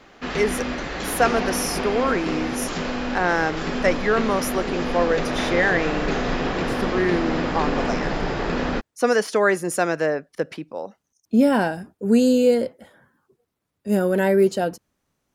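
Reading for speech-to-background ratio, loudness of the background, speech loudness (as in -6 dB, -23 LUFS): 3.5 dB, -26.0 LUFS, -22.5 LUFS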